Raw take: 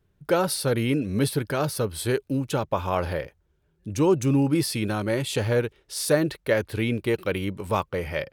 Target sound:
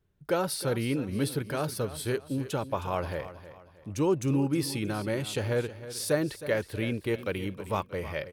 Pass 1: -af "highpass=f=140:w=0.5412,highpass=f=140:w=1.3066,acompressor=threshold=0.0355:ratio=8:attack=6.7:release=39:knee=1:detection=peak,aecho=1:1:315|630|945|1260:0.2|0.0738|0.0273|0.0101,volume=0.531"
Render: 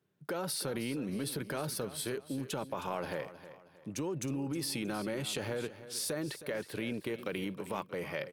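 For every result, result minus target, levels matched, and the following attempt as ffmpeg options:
compression: peak gain reduction +13.5 dB; 125 Hz band -3.5 dB
-af "highpass=f=140:w=0.5412,highpass=f=140:w=1.3066,aecho=1:1:315|630|945|1260:0.2|0.0738|0.0273|0.0101,volume=0.531"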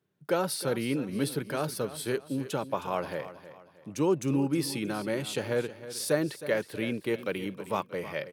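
125 Hz band -4.0 dB
-af "aecho=1:1:315|630|945|1260:0.2|0.0738|0.0273|0.0101,volume=0.531"

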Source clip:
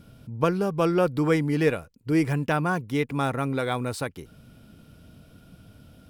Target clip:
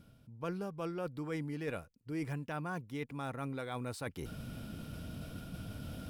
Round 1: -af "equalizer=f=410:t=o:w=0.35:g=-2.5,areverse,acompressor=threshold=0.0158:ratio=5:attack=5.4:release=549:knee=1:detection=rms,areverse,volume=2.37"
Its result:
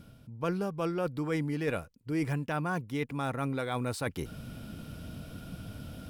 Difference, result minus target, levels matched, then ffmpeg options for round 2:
compression: peak gain reduction -7 dB
-af "equalizer=f=410:t=o:w=0.35:g=-2.5,areverse,acompressor=threshold=0.00562:ratio=5:attack=5.4:release=549:knee=1:detection=rms,areverse,volume=2.37"

